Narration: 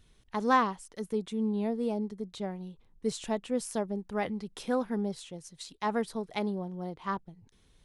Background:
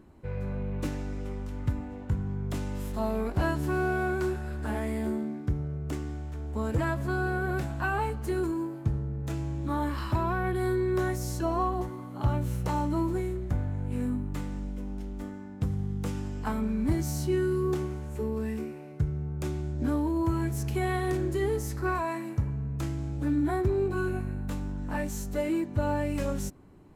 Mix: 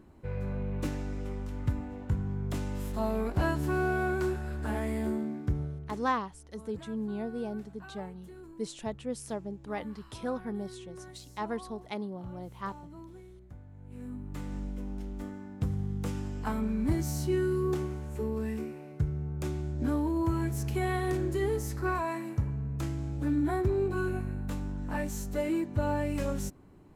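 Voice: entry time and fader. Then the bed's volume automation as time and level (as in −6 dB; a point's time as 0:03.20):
5.55 s, −4.5 dB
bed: 0:05.63 −1 dB
0:06.20 −19.5 dB
0:13.67 −19.5 dB
0:14.55 −1.5 dB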